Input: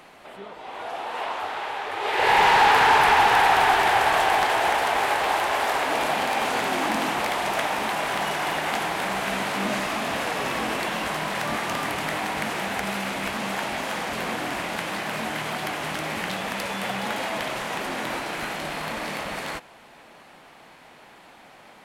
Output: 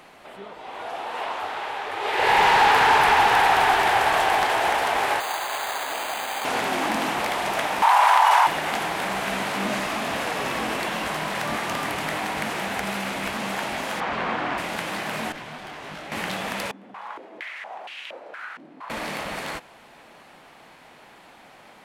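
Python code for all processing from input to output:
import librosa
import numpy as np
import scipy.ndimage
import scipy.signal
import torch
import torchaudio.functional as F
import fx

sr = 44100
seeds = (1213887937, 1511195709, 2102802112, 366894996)

y = fx.chain(x, sr, fx.highpass(hz=1100.0, slope=6),
    fx.air_absorb(metres=190.0),
    fx.resample_bad(factor=8, down='none', up='hold'), at=(5.2, 6.45))
y = fx.chain(y, sr, fx.highpass_res(hz=920.0, q=5.6),
    fx.env_flatten(amount_pct=100), at=(7.82, 8.47))
y = fx.chain(y, sr, fx.lowpass(hz=3600.0, slope=12),
    fx.peak_eq(hz=1100.0, db=5.5, octaves=1.2), at=(14.0, 14.58))
y = fx.chain(y, sr, fx.high_shelf(hz=7400.0, db=-12.0),
    fx.tube_stage(drive_db=26.0, bias=0.7),
    fx.detune_double(cents=56), at=(15.32, 16.12))
y = fx.chain(y, sr, fx.tilt_eq(slope=2.0),
    fx.filter_held_bandpass(hz=4.3, low_hz=270.0, high_hz=2800.0), at=(16.71, 18.9))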